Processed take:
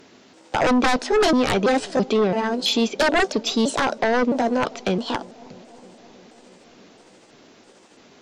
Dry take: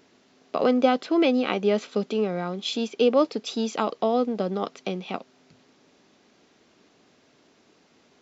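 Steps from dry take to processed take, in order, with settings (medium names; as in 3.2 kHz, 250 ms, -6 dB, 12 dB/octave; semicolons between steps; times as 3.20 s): pitch shift switched off and on +4 st, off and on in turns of 332 ms; sine folder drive 13 dB, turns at -6.5 dBFS; bucket-brigade echo 319 ms, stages 2048, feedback 73%, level -22.5 dB; trim -7.5 dB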